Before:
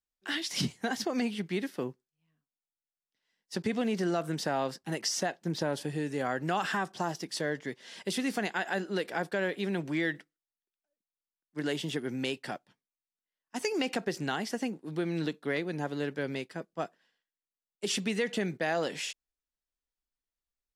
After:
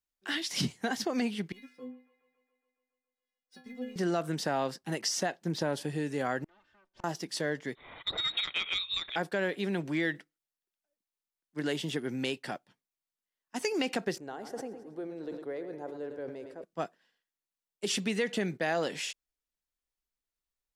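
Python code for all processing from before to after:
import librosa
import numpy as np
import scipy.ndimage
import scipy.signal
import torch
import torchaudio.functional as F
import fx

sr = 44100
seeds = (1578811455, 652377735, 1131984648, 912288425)

y = fx.chain(x, sr, fx.stiff_resonator(f0_hz=250.0, decay_s=0.39, stiffness=0.008),
    fx.echo_wet_bandpass(ms=139, feedback_pct=71, hz=1400.0, wet_db=-13.5),
    fx.resample_linear(factor=3), at=(1.52, 3.96))
y = fx.chain(y, sr, fx.lower_of_two(delay_ms=3.3),
    fx.lowpass(hz=4300.0, slope=12),
    fx.gate_flip(shuts_db=-35.0, range_db=-34), at=(6.44, 7.04))
y = fx.chain(y, sr, fx.freq_invert(carrier_hz=4000),
    fx.transformer_sat(knee_hz=1200.0), at=(7.75, 9.16))
y = fx.chain(y, sr, fx.curve_eq(hz=(100.0, 150.0, 500.0, 2800.0, 11000.0), db=(0, -20, -2, -21, -16)),
    fx.echo_feedback(ms=108, feedback_pct=56, wet_db=-13),
    fx.sustainer(db_per_s=65.0), at=(14.18, 16.64))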